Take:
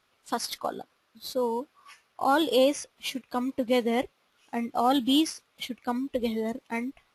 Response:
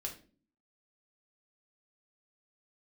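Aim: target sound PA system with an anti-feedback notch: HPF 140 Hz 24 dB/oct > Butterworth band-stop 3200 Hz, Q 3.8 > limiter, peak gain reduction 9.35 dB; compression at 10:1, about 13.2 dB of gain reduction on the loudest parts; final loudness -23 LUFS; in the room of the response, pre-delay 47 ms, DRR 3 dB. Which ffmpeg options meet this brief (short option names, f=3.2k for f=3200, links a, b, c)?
-filter_complex "[0:a]acompressor=threshold=-32dB:ratio=10,asplit=2[a][b];[1:a]atrim=start_sample=2205,adelay=47[c];[b][c]afir=irnorm=-1:irlink=0,volume=-2dB[d];[a][d]amix=inputs=2:normalize=0,highpass=f=140:w=0.5412,highpass=f=140:w=1.3066,asuperstop=centerf=3200:order=8:qfactor=3.8,volume=16.5dB,alimiter=limit=-12.5dB:level=0:latency=1"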